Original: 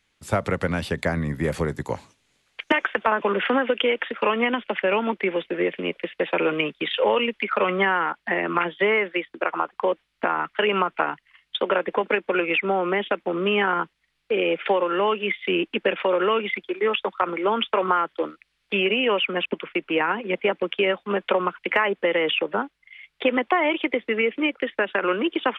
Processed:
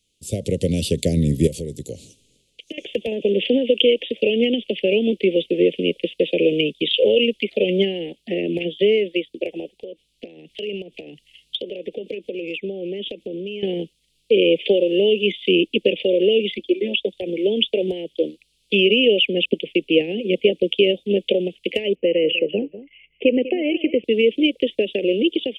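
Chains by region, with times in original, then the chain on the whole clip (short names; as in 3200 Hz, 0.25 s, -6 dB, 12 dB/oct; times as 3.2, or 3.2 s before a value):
1.47–2.78 compressor 2:1, threshold -44 dBFS + mismatched tape noise reduction decoder only
9.82–13.63 high shelf 8800 Hz -3 dB + compressor 8:1, threshold -34 dBFS
16.58–17.05 HPF 51 Hz + high shelf 4300 Hz -9.5 dB + comb 3.4 ms, depth 84%
21.95–24.04 steep low-pass 2900 Hz 96 dB/oct + echo 0.197 s -15.5 dB
whole clip: AGC; elliptic band-stop 500–2900 Hz, stop band 60 dB; bell 8600 Hz +8 dB 1.3 oct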